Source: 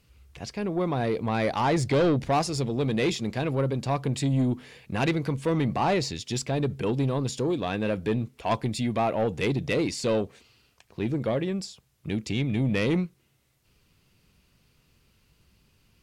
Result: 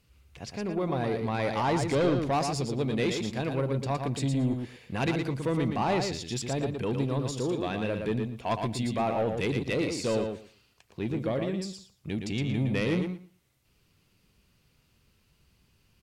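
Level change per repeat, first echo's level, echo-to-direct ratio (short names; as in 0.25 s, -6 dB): -16.0 dB, -5.5 dB, -5.5 dB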